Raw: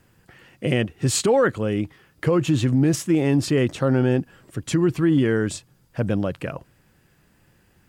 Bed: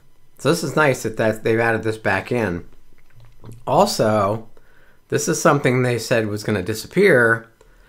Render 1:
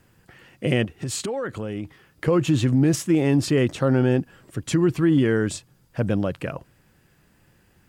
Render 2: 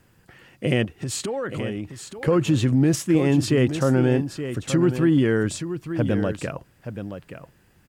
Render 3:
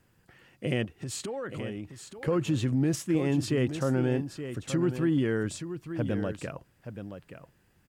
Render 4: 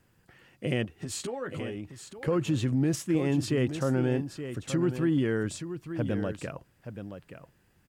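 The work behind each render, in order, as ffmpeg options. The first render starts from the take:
-filter_complex "[0:a]asettb=1/sr,asplit=3[a][b][c];[a]atrim=end=0.844[d];[b]atrim=start=0.84:end=2.28,asetpts=PTS-STARTPTS,afade=t=in:d=0.004:c=qsin,afade=t=out:st=1.436:d=0.004:c=qsin,acompressor=threshold=-25dB:ratio=6:attack=3.2:release=140:knee=1:detection=peak[e];[c]atrim=start=2.276[f];[d][e]acrossfade=d=0.004:c1=hsin:c2=qsin[g];[g][f]acrossfade=d=0.004:c1=qsin:c2=hsin"
-af "aecho=1:1:875:0.316"
-af "volume=-7.5dB"
-filter_complex "[0:a]asettb=1/sr,asplit=3[a][b][c];[a]atrim=end=0.914[d];[b]atrim=start=0.91:end=1.75,asetpts=PTS-STARTPTS,afade=t=in:d=0.004:c=qsin,afade=t=out:st=0.836:d=0.004:c=qsin,asplit=2[e][f];[f]adelay=12,volume=-6dB[g];[e][g]amix=inputs=2:normalize=0,atrim=end_sample=37044[h];[c]atrim=start=1.746[i];[d][h]acrossfade=d=0.004:c1=hsin:c2=qsin[j];[j][i]acrossfade=d=0.004:c1=qsin:c2=hsin"

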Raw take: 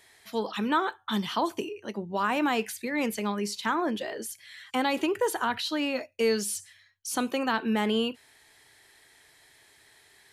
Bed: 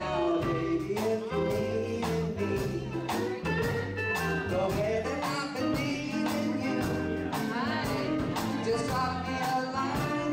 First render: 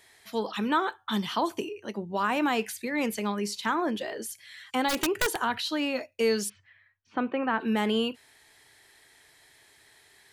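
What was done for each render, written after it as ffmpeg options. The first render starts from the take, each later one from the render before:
-filter_complex "[0:a]asplit=3[a][b][c];[a]afade=t=out:st=4.88:d=0.02[d];[b]aeval=exprs='(mod(9.44*val(0)+1,2)-1)/9.44':c=same,afade=t=in:st=4.88:d=0.02,afade=t=out:st=5.36:d=0.02[e];[c]afade=t=in:st=5.36:d=0.02[f];[d][e][f]amix=inputs=3:normalize=0,asplit=3[g][h][i];[g]afade=t=out:st=6.48:d=0.02[j];[h]lowpass=f=2.4k:w=0.5412,lowpass=f=2.4k:w=1.3066,afade=t=in:st=6.48:d=0.02,afade=t=out:st=7.59:d=0.02[k];[i]afade=t=in:st=7.59:d=0.02[l];[j][k][l]amix=inputs=3:normalize=0"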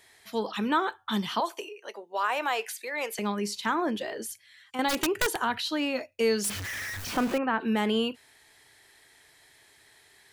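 -filter_complex "[0:a]asettb=1/sr,asplit=3[a][b][c];[a]atrim=end=1.404[d];[b]atrim=start=1.4:end=3.19,asetpts=PTS-STARTPTS,afade=t=in:d=0.004:c=qsin,afade=t=out:st=1.786:d=0.004:c=qsin,highpass=f=460:w=0.5412,highpass=f=460:w=1.3066[e];[c]atrim=start=3.186[f];[d][e]acrossfade=d=0.004:c1=hsin:c2=qsin[g];[g][f]acrossfade=d=0.004:c1=qsin:c2=hsin,asettb=1/sr,asplit=3[h][i][j];[h]atrim=end=6.444[k];[i]atrim=start=6.44:end=7.38,asetpts=PTS-STARTPTS,afade=t=in:d=0.004:c=qsin,afade=t=out:st=0.936:d=0.004:c=qsin,aeval=exprs='val(0)+0.5*0.0335*sgn(val(0))':c=same[l];[j]atrim=start=7.376[m];[k][l]acrossfade=d=0.004:c1=hsin:c2=qsin[n];[n][m]acrossfade=d=0.004:c1=qsin:c2=hsin,asplit=3[o][p][q];[o]atrim=end=4.382[r];[p]atrim=start=4.378:end=4.792,asetpts=PTS-STARTPTS,volume=-8dB[s];[q]atrim=start=4.788[t];[r][s]acrossfade=d=0.004:c1=hsin:c2=hsin[u];[u][t]acrossfade=d=0.004:c1=hsin:c2=hsin"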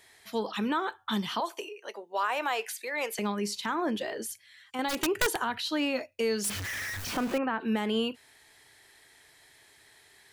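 -af "alimiter=limit=-18.5dB:level=0:latency=1:release=268"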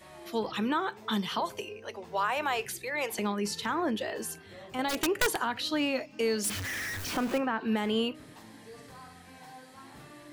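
-filter_complex "[1:a]volume=-20dB[a];[0:a][a]amix=inputs=2:normalize=0"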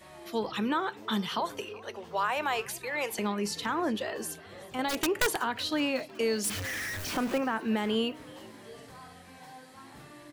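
-filter_complex "[0:a]asplit=5[a][b][c][d][e];[b]adelay=372,afreqshift=82,volume=-21.5dB[f];[c]adelay=744,afreqshift=164,volume=-26.7dB[g];[d]adelay=1116,afreqshift=246,volume=-31.9dB[h];[e]adelay=1488,afreqshift=328,volume=-37.1dB[i];[a][f][g][h][i]amix=inputs=5:normalize=0"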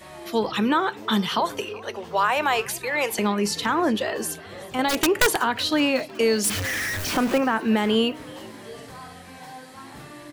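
-af "volume=8dB"

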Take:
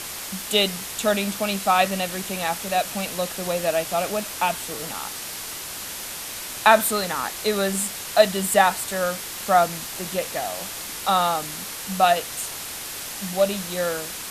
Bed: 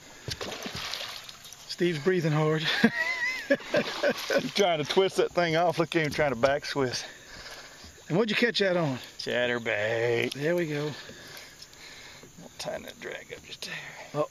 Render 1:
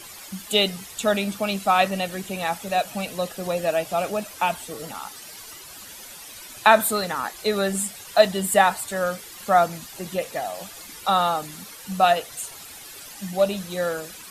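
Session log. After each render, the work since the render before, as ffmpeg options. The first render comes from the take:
-af "afftdn=nr=12:nf=-34"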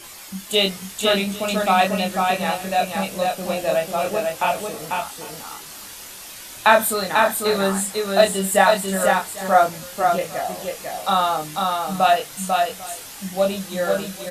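-filter_complex "[0:a]asplit=2[a][b];[b]adelay=26,volume=-4dB[c];[a][c]amix=inputs=2:normalize=0,aecho=1:1:495|797:0.668|0.106"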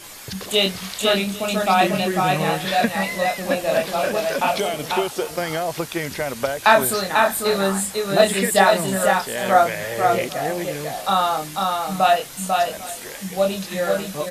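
-filter_complex "[1:a]volume=0dB[a];[0:a][a]amix=inputs=2:normalize=0"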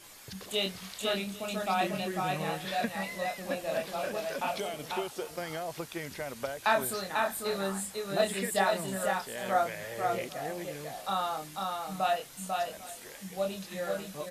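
-af "volume=-12.5dB"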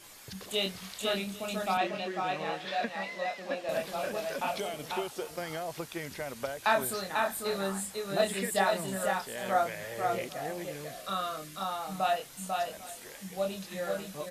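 -filter_complex "[0:a]asettb=1/sr,asplit=3[a][b][c];[a]atrim=end=1.774[d];[b]atrim=start=1.77:end=3.69,asetpts=PTS-STARTPTS,afade=t=in:d=0.004:c=qsin,afade=t=out:st=1.916:d=0.004:c=qsin,acrossover=split=220 6000:gain=0.158 1 0.126[e][f][g];[e][f][g]amix=inputs=3:normalize=0[h];[c]atrim=start=3.686[i];[d][h]acrossfade=d=0.004:c1=hsin:c2=qsin[j];[j][i]acrossfade=d=0.004:c1=qsin:c2=hsin,asettb=1/sr,asplit=3[k][l][m];[k]atrim=end=10.864[n];[l]atrim=start=10.86:end=11.61,asetpts=PTS-STARTPTS,afade=t=in:d=0.004:c=qsin,afade=t=out:st=0.746:d=0.004:c=qsin,asuperstop=centerf=850:order=4:qfactor=2.7[o];[m]atrim=start=11.606[p];[n][o]acrossfade=d=0.004:c1=hsin:c2=qsin[q];[q][p]acrossfade=d=0.004:c1=qsin:c2=hsin"

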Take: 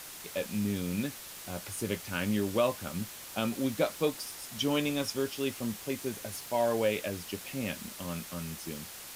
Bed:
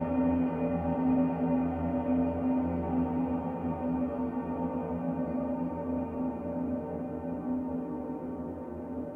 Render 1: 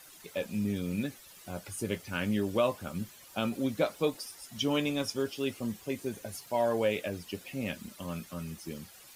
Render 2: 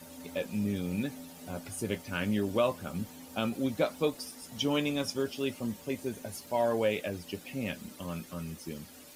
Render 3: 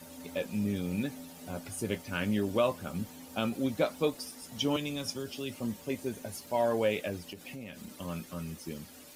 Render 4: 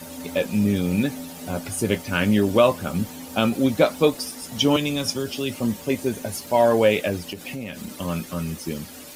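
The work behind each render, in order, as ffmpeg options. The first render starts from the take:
-af "afftdn=nr=12:nf=-46"
-filter_complex "[1:a]volume=-20dB[a];[0:a][a]amix=inputs=2:normalize=0"
-filter_complex "[0:a]asettb=1/sr,asplit=3[a][b][c];[a]atrim=end=4.764[d];[b]atrim=start=4.76:end=5.56,asetpts=PTS-STARTPTS,afade=t=in:d=0.004:c=qsin,afade=t=out:st=0.796:d=0.004:c=qsin,acrossover=split=170|3000[e][f][g];[f]acompressor=threshold=-35dB:ratio=6:attack=3.2:release=140:knee=2.83:detection=peak[h];[e][h][g]amix=inputs=3:normalize=0[i];[c]atrim=start=5.556[j];[d][i]acrossfade=d=0.004:c1=hsin:c2=qsin[k];[k][j]acrossfade=d=0.004:c1=qsin:c2=hsin,asettb=1/sr,asplit=3[l][m][n];[l]atrim=end=7.194[o];[m]atrim=start=7.19:end=7.98,asetpts=PTS-STARTPTS,afade=t=in:d=0.004:c=qsin,afade=t=out:st=0.786:d=0.004:c=qsin,acompressor=threshold=-39dB:ratio=6:attack=3.2:release=140:knee=1:detection=peak[p];[n]atrim=start=7.976[q];[o][p]acrossfade=d=0.004:c1=hsin:c2=qsin[r];[r][q]acrossfade=d=0.004:c1=qsin:c2=hsin"
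-af "volume=11dB"

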